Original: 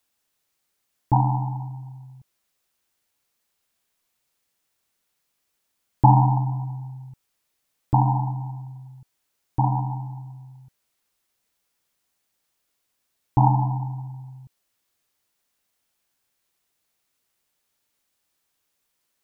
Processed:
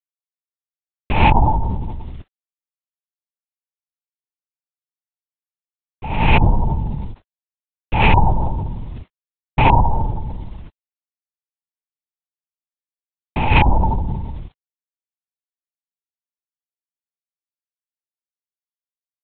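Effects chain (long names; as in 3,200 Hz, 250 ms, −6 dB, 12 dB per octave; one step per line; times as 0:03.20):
loose part that buzzes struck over −19 dBFS, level −13 dBFS
parametric band 950 Hz +2.5 dB 0.77 octaves
hum removal 116.3 Hz, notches 8
bit reduction 10 bits
compressor whose output falls as the input rises −20 dBFS, ratio −0.5
linear-prediction vocoder at 8 kHz whisper
boost into a limiter +11.5 dB
level −1 dB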